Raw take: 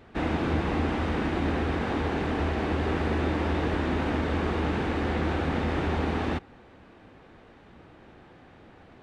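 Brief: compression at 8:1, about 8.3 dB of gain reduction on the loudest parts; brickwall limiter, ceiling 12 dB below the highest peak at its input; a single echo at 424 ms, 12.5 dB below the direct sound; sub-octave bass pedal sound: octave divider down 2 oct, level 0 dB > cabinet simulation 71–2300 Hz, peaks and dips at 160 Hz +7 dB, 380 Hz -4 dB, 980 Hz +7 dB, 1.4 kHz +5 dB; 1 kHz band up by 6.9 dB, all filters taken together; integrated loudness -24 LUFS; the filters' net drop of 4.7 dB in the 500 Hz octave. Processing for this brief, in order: peaking EQ 500 Hz -6 dB; peaking EQ 1 kHz +5 dB; compression 8:1, threshold -32 dBFS; peak limiter -34.5 dBFS; delay 424 ms -12.5 dB; octave divider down 2 oct, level 0 dB; cabinet simulation 71–2300 Hz, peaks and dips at 160 Hz +7 dB, 380 Hz -4 dB, 980 Hz +7 dB, 1.4 kHz +5 dB; trim +18 dB

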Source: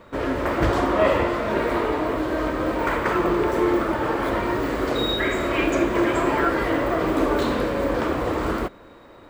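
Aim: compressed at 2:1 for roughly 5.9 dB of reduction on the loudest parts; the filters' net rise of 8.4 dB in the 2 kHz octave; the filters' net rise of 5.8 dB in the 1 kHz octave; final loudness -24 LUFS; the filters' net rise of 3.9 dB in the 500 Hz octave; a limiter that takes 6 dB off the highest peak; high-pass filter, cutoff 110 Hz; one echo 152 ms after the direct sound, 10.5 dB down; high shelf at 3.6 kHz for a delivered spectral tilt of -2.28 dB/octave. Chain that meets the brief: high-pass 110 Hz; peaking EQ 500 Hz +3.5 dB; peaking EQ 1 kHz +3.5 dB; peaking EQ 2 kHz +7 dB; treble shelf 3.6 kHz +8 dB; compression 2:1, threshold -21 dBFS; peak limiter -14 dBFS; delay 152 ms -10.5 dB; trim -1 dB

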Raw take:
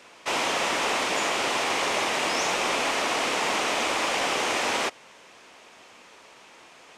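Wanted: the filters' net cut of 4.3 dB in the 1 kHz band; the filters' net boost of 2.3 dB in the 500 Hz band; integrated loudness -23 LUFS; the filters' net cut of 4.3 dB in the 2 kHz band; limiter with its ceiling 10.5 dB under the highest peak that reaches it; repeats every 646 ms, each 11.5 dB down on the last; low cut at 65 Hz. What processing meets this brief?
high-pass 65 Hz; peaking EQ 500 Hz +5 dB; peaking EQ 1 kHz -6.5 dB; peaking EQ 2 kHz -4 dB; peak limiter -24.5 dBFS; feedback delay 646 ms, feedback 27%, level -11.5 dB; trim +9.5 dB

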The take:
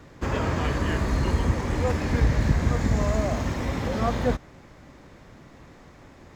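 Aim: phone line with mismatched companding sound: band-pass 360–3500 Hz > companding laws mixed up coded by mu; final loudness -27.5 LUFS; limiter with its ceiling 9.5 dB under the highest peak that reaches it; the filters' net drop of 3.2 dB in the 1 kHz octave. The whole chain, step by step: peaking EQ 1 kHz -4 dB; peak limiter -19 dBFS; band-pass 360–3500 Hz; companding laws mixed up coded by mu; trim +5.5 dB

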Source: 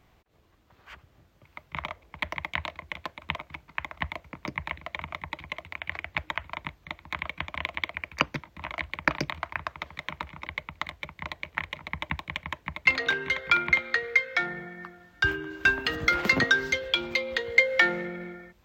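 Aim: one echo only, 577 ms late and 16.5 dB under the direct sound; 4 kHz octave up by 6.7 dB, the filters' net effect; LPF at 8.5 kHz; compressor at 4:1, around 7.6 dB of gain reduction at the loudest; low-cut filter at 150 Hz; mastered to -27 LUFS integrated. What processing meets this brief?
high-pass 150 Hz; low-pass 8.5 kHz; peaking EQ 4 kHz +8.5 dB; compression 4:1, threshold -25 dBFS; delay 577 ms -16.5 dB; trim +5 dB

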